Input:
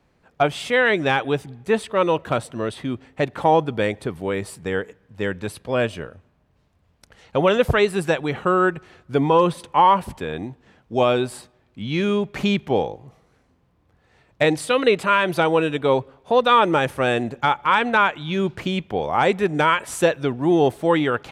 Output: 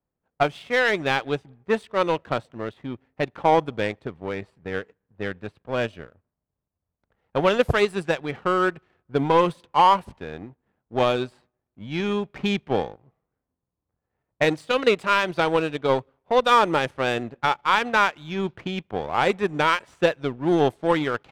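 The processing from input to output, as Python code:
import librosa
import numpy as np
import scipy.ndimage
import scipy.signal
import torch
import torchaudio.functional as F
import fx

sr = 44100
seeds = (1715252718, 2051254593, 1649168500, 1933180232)

y = fx.env_lowpass(x, sr, base_hz=1300.0, full_db=-13.5)
y = fx.power_curve(y, sr, exponent=1.4)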